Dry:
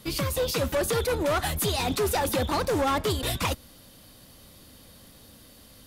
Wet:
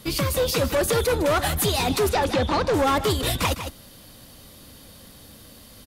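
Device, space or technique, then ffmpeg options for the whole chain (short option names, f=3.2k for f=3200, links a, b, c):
ducked delay: -filter_complex "[0:a]asettb=1/sr,asplit=3[a][b][c];[a]atrim=end=2.094[d];[b]atrim=start=2.09:end=2.74,asetpts=PTS-STARTPTS,afade=t=in:d=0.004:c=qsin,afade=t=out:st=0.646:d=0.004:c=qsin,lowpass=5.1k[e];[c]atrim=start=2.736[f];[d][e]acrossfade=d=0.004:c1=hsin:c2=qsin[g];[g][f]acrossfade=d=0.004:c1=qsin:c2=hsin,asplit=3[h][i][j];[i]adelay=155,volume=-7dB[k];[j]apad=whole_len=265284[l];[k][l]sidechaincompress=threshold=-31dB:ratio=8:attack=6.7:release=265[m];[h][m]amix=inputs=2:normalize=0,volume=4dB"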